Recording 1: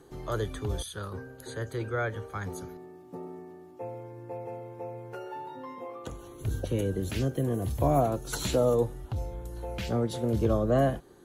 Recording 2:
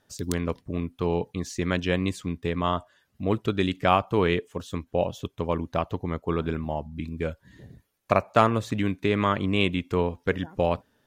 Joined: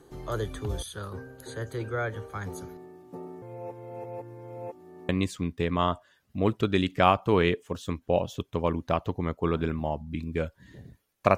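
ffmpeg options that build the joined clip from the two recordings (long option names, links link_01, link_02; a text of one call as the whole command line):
ffmpeg -i cue0.wav -i cue1.wav -filter_complex "[0:a]apad=whole_dur=11.37,atrim=end=11.37,asplit=2[link_01][link_02];[link_01]atrim=end=3.422[link_03];[link_02]atrim=start=3.418:end=5.092,asetpts=PTS-STARTPTS,areverse[link_04];[1:a]atrim=start=1.938:end=8.22[link_05];[link_03][link_04]acrossfade=duration=0.004:curve1=hsin:curve2=hsin[link_06];[link_06][link_05]acrossfade=duration=0.004:curve1=hsin:curve2=hsin" out.wav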